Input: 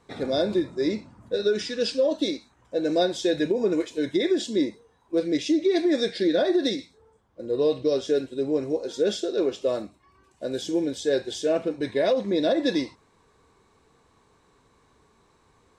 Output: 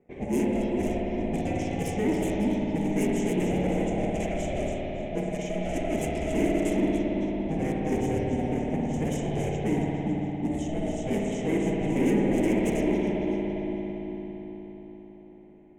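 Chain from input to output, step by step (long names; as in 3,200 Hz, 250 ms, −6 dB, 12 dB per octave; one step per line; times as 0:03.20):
low-shelf EQ 390 Hz −10.5 dB
echo with a time of its own for lows and highs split 1,600 Hz, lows 404 ms, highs 277 ms, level −7.5 dB
ring modulation 320 Hz
wave folding −27 dBFS
drawn EQ curve 120 Hz 0 dB, 230 Hz +12 dB, 400 Hz +13 dB, 1,400 Hz −21 dB, 2,100 Hz +2 dB, 3,000 Hz −6 dB, 4,400 Hz −26 dB, 6,500 Hz +2 dB
low-pass that shuts in the quiet parts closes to 1,800 Hz, open at −26.5 dBFS
spring reverb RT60 4 s, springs 55 ms, chirp 20 ms, DRR −2.5 dB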